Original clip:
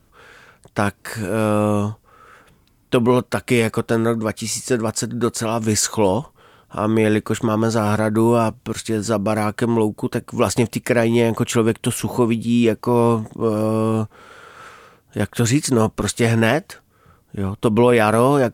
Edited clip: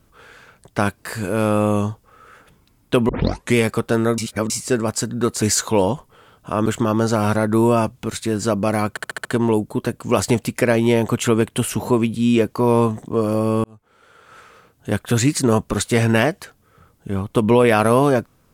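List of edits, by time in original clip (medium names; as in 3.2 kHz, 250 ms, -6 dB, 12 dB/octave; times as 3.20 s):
3.09 s: tape start 0.46 s
4.18–4.50 s: reverse
5.42–5.68 s: delete
6.92–7.29 s: delete
9.53 s: stutter 0.07 s, 6 plays
13.92–15.18 s: fade in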